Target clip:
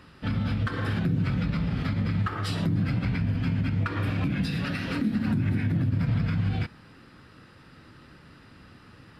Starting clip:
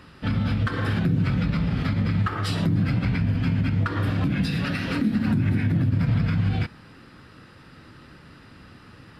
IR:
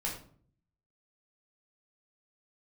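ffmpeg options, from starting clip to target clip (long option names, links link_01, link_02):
-filter_complex "[0:a]asettb=1/sr,asplit=3[link_01][link_02][link_03];[link_01]atrim=end=3.814[link_04];[link_02]atrim=start=3.81:end=4.31,asetpts=PTS-STARTPTS,afade=type=in:duration=0.004:curve=qsin,afade=type=out:start_time=0.496:duration=0.004:curve=qsin,equalizer=frequency=2400:width=5.7:gain=8.5[link_05];[link_03]atrim=start=4.306[link_06];[link_04][link_05]acrossfade=duration=0.004:curve1=hsin:curve2=qsin[link_07];[link_07][link_06]acrossfade=duration=0.004:curve1=qsin:curve2=hsin,volume=-3.5dB"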